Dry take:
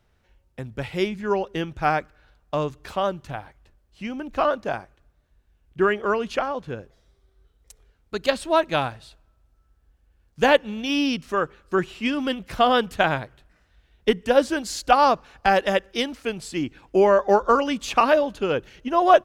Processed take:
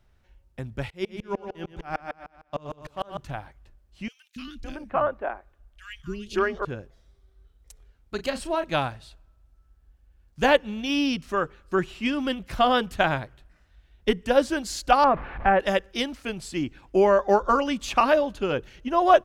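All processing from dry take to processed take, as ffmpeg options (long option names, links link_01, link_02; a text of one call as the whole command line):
ffmpeg -i in.wav -filter_complex "[0:a]asettb=1/sr,asplit=3[link_01][link_02][link_03];[link_01]atrim=end=0.904[link_04];[link_02]atrim=start=0.9:end=3.18,asetpts=PTS-STARTPTS,afade=type=in:duration=0.004:curve=qsin,afade=type=out:start_time=2.276:duration=0.004:curve=qsin,aecho=1:1:121|242|363|484|605|726:0.562|0.276|0.135|0.0662|0.0324|0.0159,atrim=end_sample=100548,aeval=exprs='val(0)*pow(10,-33*if(lt(mod(-6.6*n/s,1),2*abs(-6.6)/1000),1-mod(-6.6*n/s,1)/(2*abs(-6.6)/1000),(mod(-6.6*n/s,1)-2*abs(-6.6)/1000)/(1-2*abs(-6.6)/1000))/20)':channel_layout=same[link_05];[link_03]atrim=start=3.176[link_06];[link_04][link_05]acrossfade=duration=0.004:curve1=hsin:curve2=qsin[link_07];[link_07][link_06]acrossfade=duration=0.004:curve1=qsin:curve2=hsin,asettb=1/sr,asplit=3[link_08][link_09][link_10];[link_08]atrim=end=4.084[link_11];[link_09]atrim=start=4.08:end=6.65,asetpts=PTS-STARTPTS,afade=type=in:duration=0.004:curve=qsin,afade=type=out:start_time=2.566:duration=0.004:curve=qsin,acrossover=split=270|2400[link_12][link_13][link_14];[link_12]adelay=280[link_15];[link_13]adelay=560[link_16];[link_15][link_16][link_14]amix=inputs=3:normalize=0,atrim=end_sample=113337,asubboost=boost=2.5:cutoff=65[link_17];[link_10]atrim=start=6.646[link_18];[link_11][link_17]acrossfade=duration=0.004:curve1=hsin:curve2=qsin[link_19];[link_19][link_18]acrossfade=duration=0.004:curve1=qsin:curve2=hsin,asettb=1/sr,asplit=3[link_20][link_21][link_22];[link_20]atrim=end=8.154[link_23];[link_21]atrim=start=8.15:end=8.64,asetpts=PTS-STARTPTS,afade=type=in:duration=0.004:curve=qsin,afade=type=out:start_time=0.486:duration=0.004:curve=qsin,acompressor=threshold=-20dB:ratio=3:attack=3.2:release=140:knee=1:detection=peak,bandreject=frequency=3600:width=9.7,asplit=2[link_24][link_25];[link_25]adelay=34,volume=-10dB[link_26];[link_24][link_26]amix=inputs=2:normalize=0,atrim=end_sample=21609[link_27];[link_22]atrim=start=8.636[link_28];[link_23][link_27]acrossfade=duration=0.004:curve1=hsin:curve2=qsin[link_29];[link_29][link_28]acrossfade=duration=0.004:curve1=qsin:curve2=hsin,asettb=1/sr,asplit=3[link_30][link_31][link_32];[link_30]atrim=end=15.044[link_33];[link_31]atrim=start=15.04:end=15.6,asetpts=PTS-STARTPTS,afade=type=in:duration=0.004:curve=qsin,afade=type=out:start_time=0.556:duration=0.004:curve=qsin,aeval=exprs='val(0)+0.5*0.0299*sgn(val(0))':channel_layout=same,lowpass=frequency=2200:width=0.5412,lowpass=frequency=2200:width=1.3066[link_34];[link_32]atrim=start=15.596[link_35];[link_33][link_34]acrossfade=duration=0.004:curve1=hsin:curve2=qsin[link_36];[link_36][link_35]acrossfade=duration=0.004:curve1=qsin:curve2=hsin,lowshelf=frequency=65:gain=9,bandreject=frequency=460:width=12,volume=-2dB" out.wav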